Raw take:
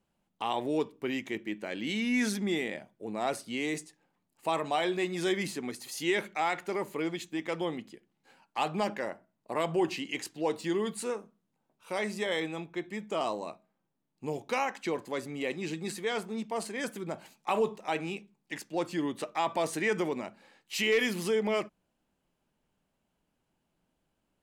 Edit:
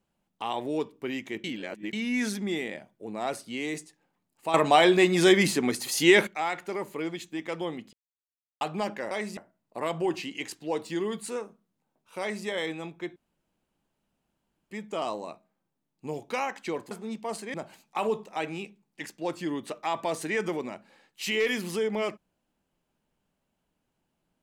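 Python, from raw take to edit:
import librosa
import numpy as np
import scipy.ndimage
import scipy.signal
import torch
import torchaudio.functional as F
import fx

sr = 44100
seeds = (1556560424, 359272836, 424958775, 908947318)

y = fx.edit(x, sr, fx.reverse_span(start_s=1.44, length_s=0.49),
    fx.clip_gain(start_s=4.54, length_s=1.73, db=10.5),
    fx.silence(start_s=7.93, length_s=0.68),
    fx.duplicate(start_s=11.94, length_s=0.26, to_s=9.11),
    fx.insert_room_tone(at_s=12.9, length_s=1.55),
    fx.cut(start_s=15.1, length_s=1.08),
    fx.cut(start_s=16.81, length_s=0.25), tone=tone)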